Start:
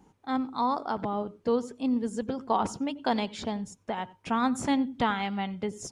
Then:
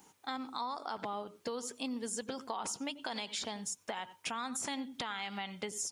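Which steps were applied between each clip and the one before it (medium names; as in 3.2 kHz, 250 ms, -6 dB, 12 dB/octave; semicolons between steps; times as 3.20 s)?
tilt EQ +4 dB/octave; peak limiter -22.5 dBFS, peak gain reduction 10 dB; compression, threshold -36 dBFS, peak gain reduction 9 dB; trim +1 dB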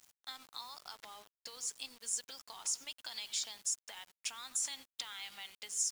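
band-pass filter 6.9 kHz, Q 1.1; word length cut 10-bit, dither none; trim +5 dB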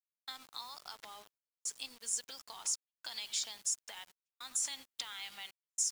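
trance gate "..xxxxxxxx" 109 bpm -60 dB; trim +1 dB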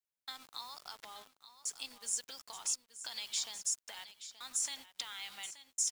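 delay 877 ms -13 dB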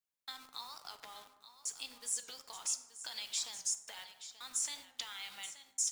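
plate-style reverb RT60 1.1 s, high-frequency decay 0.45×, DRR 9 dB; warped record 45 rpm, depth 100 cents; trim -1 dB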